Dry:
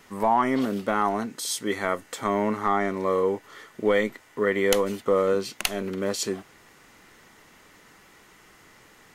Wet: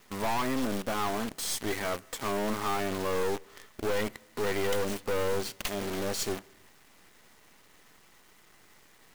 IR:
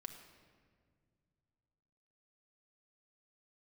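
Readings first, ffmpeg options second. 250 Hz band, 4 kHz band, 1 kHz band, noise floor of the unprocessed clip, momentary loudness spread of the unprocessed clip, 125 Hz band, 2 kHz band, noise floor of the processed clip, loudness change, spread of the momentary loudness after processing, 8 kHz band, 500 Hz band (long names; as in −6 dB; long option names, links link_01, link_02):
−6.5 dB, −3.0 dB, −7.5 dB, −55 dBFS, 7 LU, −2.5 dB, −5.0 dB, −59 dBFS, −6.0 dB, 5 LU, −3.0 dB, −7.0 dB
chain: -filter_complex "[0:a]bandreject=frequency=1400:width=18,aeval=exprs='(tanh(28.2*val(0)+0.65)-tanh(0.65))/28.2':channel_layout=same,acrusher=bits=7:dc=4:mix=0:aa=0.000001,asplit=2[link_01][link_02];[1:a]atrim=start_sample=2205,afade=type=out:start_time=0.38:duration=0.01,atrim=end_sample=17199[link_03];[link_02][link_03]afir=irnorm=-1:irlink=0,volume=-12dB[link_04];[link_01][link_04]amix=inputs=2:normalize=0"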